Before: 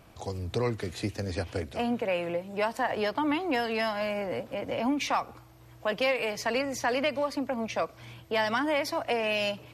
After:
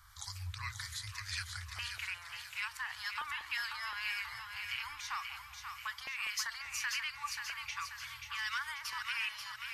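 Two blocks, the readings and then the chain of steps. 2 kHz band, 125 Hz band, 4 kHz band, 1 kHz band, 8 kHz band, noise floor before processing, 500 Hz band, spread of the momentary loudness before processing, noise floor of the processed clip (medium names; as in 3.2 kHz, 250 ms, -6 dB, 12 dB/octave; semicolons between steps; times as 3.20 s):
-4.0 dB, -11.5 dB, -3.5 dB, -12.0 dB, +0.5 dB, -53 dBFS, under -40 dB, 7 LU, -51 dBFS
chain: inverse Chebyshev band-stop 170–600 Hz, stop band 50 dB; bass shelf 230 Hz -7 dB; in parallel at +2 dB: compression, threshold -44 dBFS, peak gain reduction 16.5 dB; on the sum: peak limiter -25 dBFS, peak gain reduction 8 dB; LFO notch square 1.4 Hz 700–2600 Hz; harmonic tremolo 1.8 Hz, depth 50%, crossover 1.2 kHz; on a send: two-band feedback delay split 810 Hz, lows 194 ms, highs 535 ms, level -6 dB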